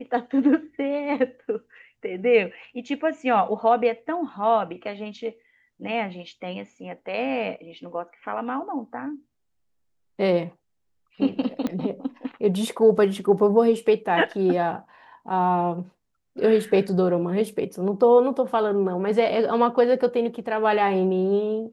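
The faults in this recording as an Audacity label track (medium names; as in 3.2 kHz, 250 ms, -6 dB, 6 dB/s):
11.670000	11.670000	pop -15 dBFS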